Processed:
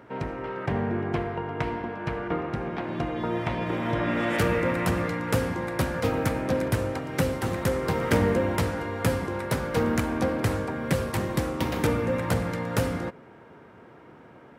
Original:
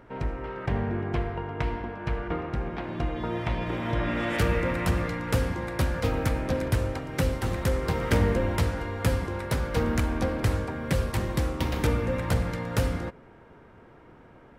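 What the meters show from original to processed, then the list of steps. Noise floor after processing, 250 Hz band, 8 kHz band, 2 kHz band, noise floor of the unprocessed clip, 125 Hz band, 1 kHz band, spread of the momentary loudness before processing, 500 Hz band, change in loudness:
-50 dBFS, +2.5 dB, +2.0 dB, +2.0 dB, -52 dBFS, -1.5 dB, +2.5 dB, 6 LU, +3.0 dB, +1.0 dB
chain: HPF 120 Hz 12 dB/oct; dynamic EQ 3900 Hz, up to -3 dB, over -45 dBFS, Q 0.75; gain +3 dB

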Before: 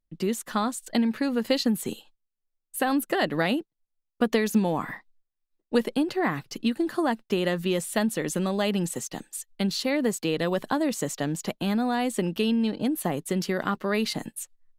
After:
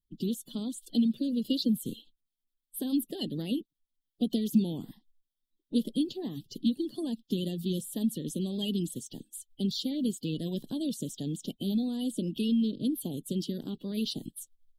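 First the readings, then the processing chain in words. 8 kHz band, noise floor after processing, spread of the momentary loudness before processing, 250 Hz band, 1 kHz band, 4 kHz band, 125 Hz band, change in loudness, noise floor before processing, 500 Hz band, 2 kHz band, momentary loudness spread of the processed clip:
-8.0 dB, under -85 dBFS, 6 LU, -3.0 dB, under -20 dB, -4.5 dB, -3.5 dB, -5.0 dB, -82 dBFS, -12.0 dB, under -20 dB, 10 LU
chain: bin magnitudes rounded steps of 30 dB; EQ curve 130 Hz 0 dB, 260 Hz +4 dB, 1200 Hz -30 dB, 2200 Hz -30 dB, 3200 Hz +6 dB, 6500 Hz -7 dB, 11000 Hz 0 dB; gain -4 dB

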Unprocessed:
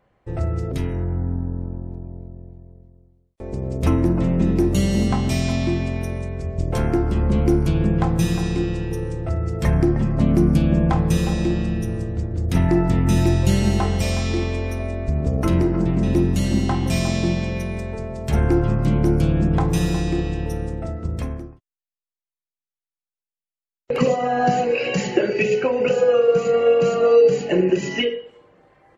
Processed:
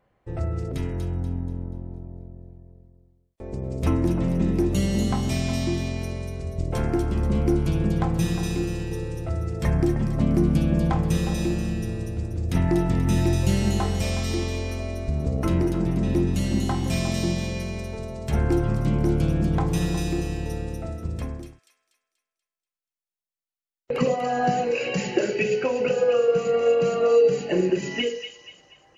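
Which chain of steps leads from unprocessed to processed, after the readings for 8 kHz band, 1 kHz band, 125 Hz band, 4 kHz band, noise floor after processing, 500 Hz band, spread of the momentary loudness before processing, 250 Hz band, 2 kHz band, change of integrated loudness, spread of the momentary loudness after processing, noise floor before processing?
-2.0 dB, -4.0 dB, -4.0 dB, -2.5 dB, under -85 dBFS, -4.0 dB, 11 LU, -4.0 dB, -3.5 dB, -4.0 dB, 11 LU, under -85 dBFS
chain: thin delay 0.241 s, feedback 40%, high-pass 3200 Hz, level -3.5 dB; gain -4 dB

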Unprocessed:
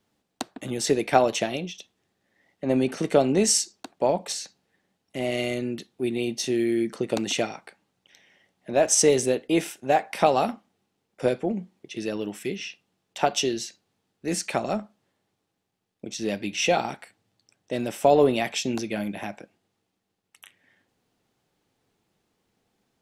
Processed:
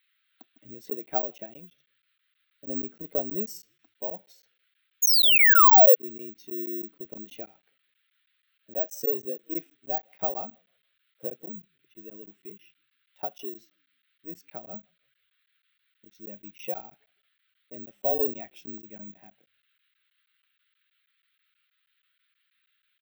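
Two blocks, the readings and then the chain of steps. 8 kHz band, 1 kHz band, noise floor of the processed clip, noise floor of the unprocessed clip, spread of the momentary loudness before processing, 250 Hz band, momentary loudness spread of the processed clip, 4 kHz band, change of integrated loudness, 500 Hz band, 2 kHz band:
-8.5 dB, -1.0 dB, -76 dBFS, -78 dBFS, 16 LU, -14.5 dB, 26 LU, +1.5 dB, +3.5 dB, -7.0 dB, +4.0 dB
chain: high shelf 7200 Hz -8 dB; frequency-shifting echo 0.159 s, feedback 45%, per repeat -40 Hz, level -23.5 dB; painted sound fall, 5.02–5.95, 460–7000 Hz -10 dBFS; band noise 1300–4000 Hz -46 dBFS; careless resampling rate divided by 2×, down filtered, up zero stuff; crackling interface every 0.16 s, samples 512, zero, from 0.9; spectral expander 1.5:1; gain -8.5 dB

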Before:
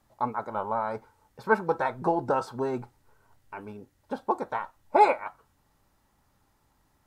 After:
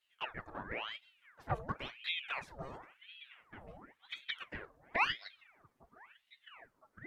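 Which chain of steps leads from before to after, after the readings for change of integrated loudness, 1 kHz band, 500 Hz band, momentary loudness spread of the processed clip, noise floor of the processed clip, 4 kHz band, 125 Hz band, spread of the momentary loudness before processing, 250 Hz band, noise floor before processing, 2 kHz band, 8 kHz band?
-11.5 dB, -16.0 dB, -20.0 dB, 23 LU, -79 dBFS, +9.5 dB, -6.5 dB, 20 LU, -17.0 dB, -69 dBFS, -4.5 dB, n/a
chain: delay with a stepping band-pass 0.505 s, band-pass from 170 Hz, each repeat 0.7 oct, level -11 dB; envelope flanger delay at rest 9.6 ms, full sweep at -20 dBFS; ring modulator with a swept carrier 1600 Hz, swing 85%, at 0.95 Hz; gain -7.5 dB

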